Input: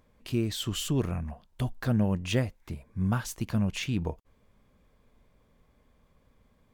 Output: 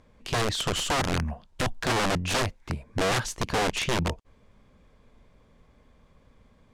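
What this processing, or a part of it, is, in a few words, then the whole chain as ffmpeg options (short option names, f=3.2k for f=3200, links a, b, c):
overflowing digital effects unit: -af "aeval=exprs='(mod(18.8*val(0)+1,2)-1)/18.8':c=same,lowpass=8k,volume=6dB"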